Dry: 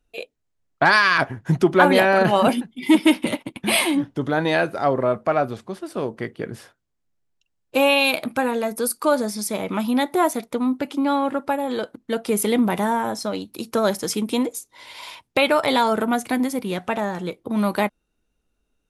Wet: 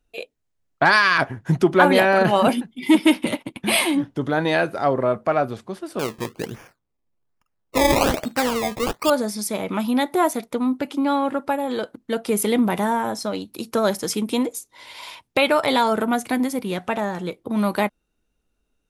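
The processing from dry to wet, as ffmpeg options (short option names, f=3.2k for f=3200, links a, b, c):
-filter_complex "[0:a]asettb=1/sr,asplit=3[a][b][c];[a]atrim=end=5.994[d];[b]atrim=start=5.99:end=9.1,asetpts=PTS-STARTPTS,afade=t=in:d=0.004:c=qsin,afade=t=out:st=3.106:d=0.004:c=qsin,acrusher=samples=21:mix=1:aa=0.000001:lfo=1:lforange=21:lforate=1.2[e];[c]atrim=start=9.096[f];[d][e]acrossfade=d=0.004:c1=hsin:c2=qsin[g];[g][f]acrossfade=d=0.004:c1=qsin:c2=hsin"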